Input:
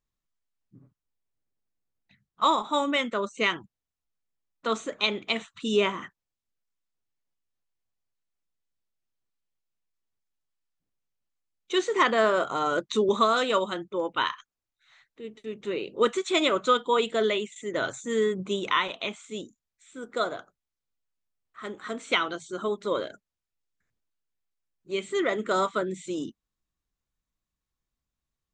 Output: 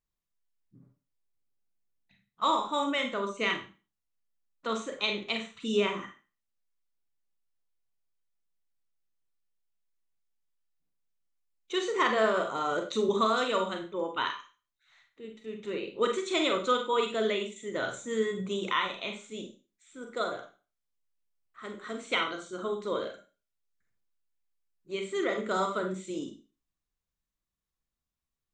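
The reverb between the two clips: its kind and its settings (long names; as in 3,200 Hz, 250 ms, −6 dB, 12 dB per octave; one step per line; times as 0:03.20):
four-comb reverb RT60 0.34 s, combs from 32 ms, DRR 4 dB
level −5 dB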